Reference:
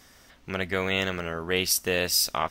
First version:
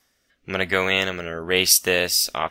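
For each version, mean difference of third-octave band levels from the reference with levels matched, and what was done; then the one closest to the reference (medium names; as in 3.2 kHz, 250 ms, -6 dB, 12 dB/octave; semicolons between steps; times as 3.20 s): 5.0 dB: spectral noise reduction 16 dB; bass shelf 340 Hz -8 dB; rotary cabinet horn 1 Hz; trim +9 dB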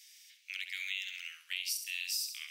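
19.5 dB: elliptic high-pass 2.3 kHz, stop band 80 dB; on a send: flutter echo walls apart 11.5 m, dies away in 0.42 s; on the sum: compression 4:1, threshold -35 dBFS, peak gain reduction 13 dB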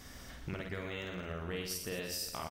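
8.5 dB: bass shelf 250 Hz +8 dB; compression 10:1, threshold -38 dBFS, peak gain reduction 19 dB; reverse bouncing-ball echo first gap 50 ms, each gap 1.4×, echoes 5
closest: first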